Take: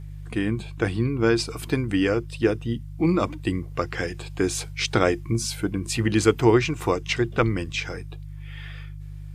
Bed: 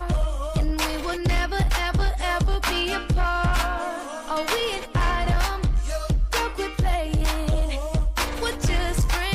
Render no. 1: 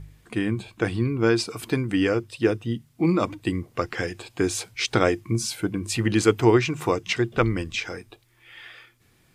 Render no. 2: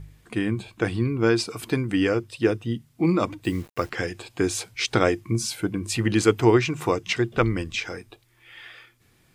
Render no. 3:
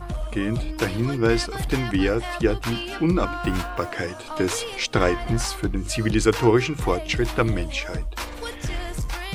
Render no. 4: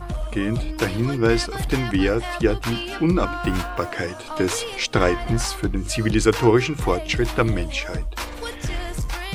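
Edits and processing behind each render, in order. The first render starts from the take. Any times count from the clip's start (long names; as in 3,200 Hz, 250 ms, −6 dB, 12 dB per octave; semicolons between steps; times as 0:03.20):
hum removal 50 Hz, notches 3
0:03.44–0:03.90: bit-depth reduction 8 bits, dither none
mix in bed −6.5 dB
level +1.5 dB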